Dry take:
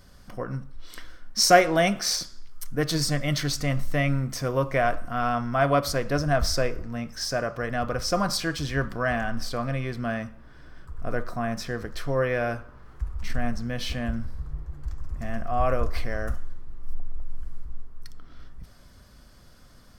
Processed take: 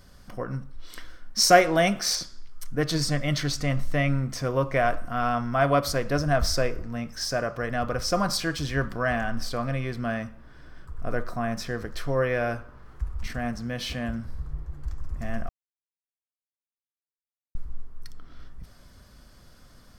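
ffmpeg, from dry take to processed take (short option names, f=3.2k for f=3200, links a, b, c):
-filter_complex "[0:a]asettb=1/sr,asplit=3[a][b][c];[a]atrim=end=2.154[d];[b]atrim=start=2.15:end=4.76,asetpts=PTS-STARTPTS,afade=t=in:d=0.004:c=qsin,afade=t=out:st=2.606:d=0.004:c=qsin,highshelf=f=11k:g=-9.5[e];[c]atrim=start=4.756[f];[d][e]acrossfade=d=0.004:c1=hsin:c2=qsin[g];[g][f]acrossfade=d=0.004:c1=qsin:c2=hsin,asettb=1/sr,asplit=3[h][i][j];[h]atrim=end=13.264[k];[i]atrim=start=13.26:end=14.29,asetpts=PTS-STARTPTS,afade=t=in:d=0.004:c=qsin,afade=t=out:st=1.026:d=0.004:c=qsin,highpass=f=82:p=1[l];[j]atrim=start=14.286[m];[k][l]acrossfade=d=0.004:c1=hsin:c2=qsin[n];[n][m]acrossfade=d=0.004:c1=qsin:c2=hsin,asplit=3[o][p][q];[o]atrim=end=15.49,asetpts=PTS-STARTPTS,afade=t=out:st=15.486:d=0.004:c=hsin[r];[p]atrim=start=15.49:end=17.55,asetpts=PTS-STARTPTS,volume=0[s];[q]atrim=start=17.55,asetpts=PTS-STARTPTS,afade=t=in:d=0.004:c=hsin[t];[r][s][t]concat=n=3:v=0:a=1"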